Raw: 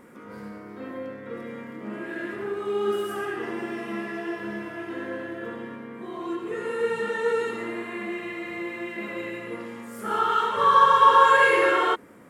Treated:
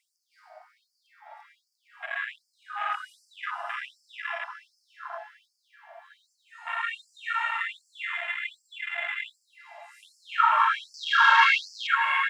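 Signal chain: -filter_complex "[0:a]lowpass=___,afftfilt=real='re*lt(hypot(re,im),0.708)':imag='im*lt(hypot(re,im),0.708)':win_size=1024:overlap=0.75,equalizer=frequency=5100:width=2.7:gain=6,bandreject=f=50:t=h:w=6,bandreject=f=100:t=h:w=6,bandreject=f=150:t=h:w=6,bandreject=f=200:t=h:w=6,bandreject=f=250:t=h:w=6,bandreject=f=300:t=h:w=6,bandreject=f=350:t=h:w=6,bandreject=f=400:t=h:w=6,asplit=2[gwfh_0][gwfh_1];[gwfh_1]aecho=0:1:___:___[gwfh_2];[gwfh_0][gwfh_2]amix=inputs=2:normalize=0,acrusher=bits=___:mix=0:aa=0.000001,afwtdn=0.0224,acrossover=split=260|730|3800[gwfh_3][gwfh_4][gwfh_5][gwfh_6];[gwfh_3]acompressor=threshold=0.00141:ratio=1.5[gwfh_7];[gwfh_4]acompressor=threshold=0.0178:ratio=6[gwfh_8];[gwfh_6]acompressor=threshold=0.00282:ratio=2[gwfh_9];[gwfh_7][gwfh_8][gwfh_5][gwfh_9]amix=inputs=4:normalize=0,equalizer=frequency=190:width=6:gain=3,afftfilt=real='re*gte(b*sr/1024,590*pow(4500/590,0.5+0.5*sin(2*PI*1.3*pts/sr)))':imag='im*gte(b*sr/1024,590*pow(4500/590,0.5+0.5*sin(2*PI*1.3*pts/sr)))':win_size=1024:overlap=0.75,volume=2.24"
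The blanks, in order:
8200, 613, 0.473, 11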